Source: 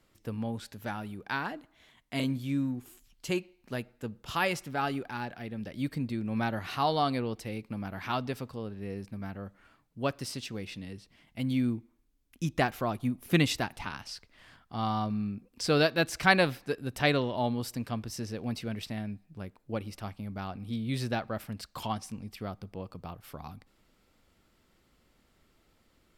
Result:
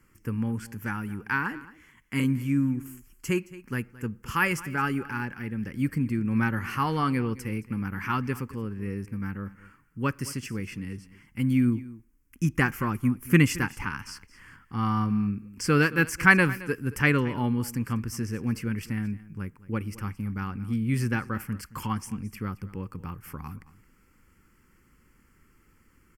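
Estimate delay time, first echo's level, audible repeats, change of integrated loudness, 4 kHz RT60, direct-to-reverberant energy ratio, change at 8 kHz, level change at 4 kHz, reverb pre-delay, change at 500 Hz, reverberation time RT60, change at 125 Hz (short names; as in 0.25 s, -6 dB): 0.22 s, -18.5 dB, 1, +4.5 dB, none, none, +4.5 dB, -4.0 dB, none, -1.0 dB, none, +7.0 dB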